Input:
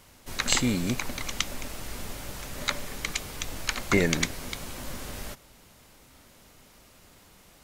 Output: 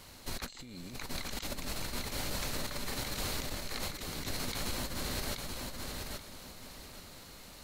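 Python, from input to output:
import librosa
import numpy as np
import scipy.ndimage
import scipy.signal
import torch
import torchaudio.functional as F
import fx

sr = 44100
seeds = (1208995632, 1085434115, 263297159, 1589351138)

y = fx.peak_eq(x, sr, hz=4200.0, db=9.5, octaves=0.21)
y = fx.over_compress(y, sr, threshold_db=-37.0, ratio=-1.0)
y = fx.echo_feedback(y, sr, ms=830, feedback_pct=26, wet_db=-4.0)
y = F.gain(torch.from_numpy(y), -3.5).numpy()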